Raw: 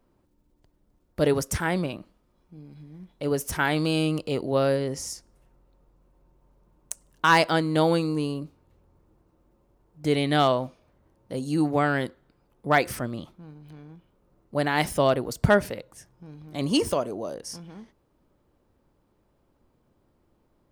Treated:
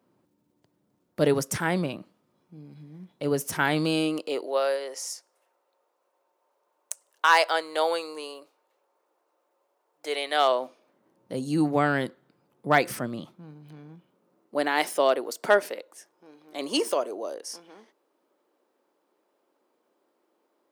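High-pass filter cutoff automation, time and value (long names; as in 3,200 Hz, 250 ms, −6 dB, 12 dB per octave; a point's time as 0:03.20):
high-pass filter 24 dB per octave
0:03.68 120 Hz
0:04.61 500 Hz
0:10.32 500 Hz
0:11.33 130 Hz
0:13.89 130 Hz
0:14.85 330 Hz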